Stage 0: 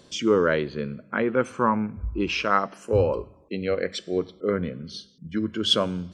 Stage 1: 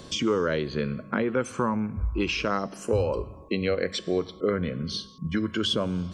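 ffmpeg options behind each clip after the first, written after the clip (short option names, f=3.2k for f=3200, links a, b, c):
-filter_complex "[0:a]lowshelf=f=100:g=8,acrossover=split=610|4200[a][b][c];[a]acompressor=threshold=-34dB:ratio=4[d];[b]acompressor=threshold=-39dB:ratio=4[e];[c]acompressor=threshold=-45dB:ratio=4[f];[d][e][f]amix=inputs=3:normalize=0,aeval=exprs='val(0)+0.000631*sin(2*PI*1100*n/s)':c=same,volume=7.5dB"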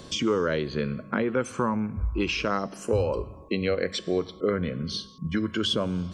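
-af anull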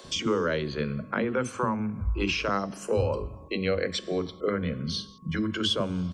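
-filter_complex "[0:a]acrossover=split=330[a][b];[a]adelay=40[c];[c][b]amix=inputs=2:normalize=0"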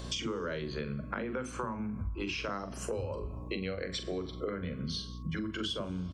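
-filter_complex "[0:a]asplit=2[a][b];[b]adelay=43,volume=-10.5dB[c];[a][c]amix=inputs=2:normalize=0,aeval=exprs='val(0)+0.00891*(sin(2*PI*60*n/s)+sin(2*PI*2*60*n/s)/2+sin(2*PI*3*60*n/s)/3+sin(2*PI*4*60*n/s)/4+sin(2*PI*5*60*n/s)/5)':c=same,acompressor=threshold=-33dB:ratio=6"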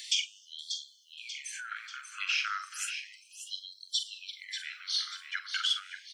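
-filter_complex "[0:a]asuperstop=centerf=800:order=8:qfactor=1,asplit=2[a][b];[b]aecho=0:1:588|1176|1764|2352|2940:0.376|0.18|0.0866|0.0416|0.02[c];[a][c]amix=inputs=2:normalize=0,afftfilt=real='re*gte(b*sr/1024,830*pow(3200/830,0.5+0.5*sin(2*PI*0.33*pts/sr)))':imag='im*gte(b*sr/1024,830*pow(3200/830,0.5+0.5*sin(2*PI*0.33*pts/sr)))':win_size=1024:overlap=0.75,volume=8dB"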